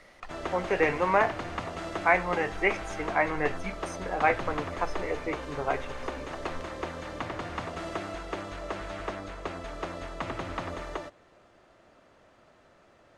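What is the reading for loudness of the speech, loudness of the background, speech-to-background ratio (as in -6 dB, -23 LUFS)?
-29.0 LUFS, -37.0 LUFS, 8.0 dB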